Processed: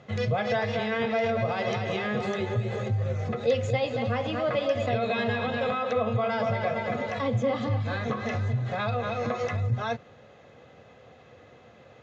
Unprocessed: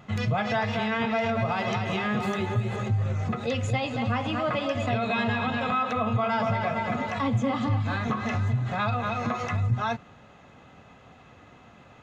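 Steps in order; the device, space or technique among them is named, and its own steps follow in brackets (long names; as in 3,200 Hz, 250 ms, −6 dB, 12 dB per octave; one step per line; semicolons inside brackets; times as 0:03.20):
car door speaker (loudspeaker in its box 84–6,600 Hz, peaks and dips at 180 Hz −6 dB, 270 Hz −5 dB, 500 Hz +9 dB, 920 Hz −6 dB, 1,300 Hz −5 dB, 2,700 Hz −4 dB)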